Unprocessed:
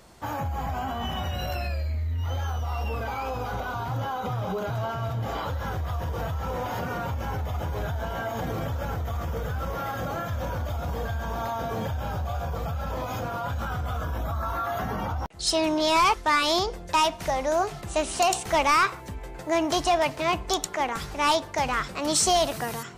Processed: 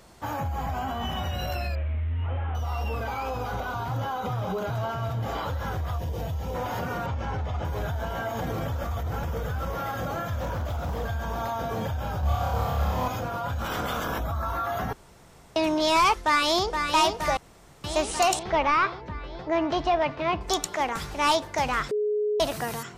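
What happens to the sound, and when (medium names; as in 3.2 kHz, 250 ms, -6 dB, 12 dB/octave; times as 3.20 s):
1.75–2.55 s: one-bit delta coder 16 kbps, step -44.5 dBFS
5.98–6.55 s: peaking EQ 1.3 kHz -12.5 dB 1 oct
7.06–7.65 s: low-pass 5.4 kHz
8.84–9.24 s: reverse
10.40–11.05 s: loudspeaker Doppler distortion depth 0.22 ms
12.20–13.08 s: flutter echo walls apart 4.8 m, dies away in 1.1 s
13.64–14.18 s: spectral peaks clipped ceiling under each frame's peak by 22 dB
14.93–15.56 s: room tone
16.20–16.86 s: echo throw 470 ms, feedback 75%, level -6 dB
17.37–17.84 s: room tone
18.39–20.41 s: distance through air 250 m
21.91–22.40 s: bleep 420 Hz -22.5 dBFS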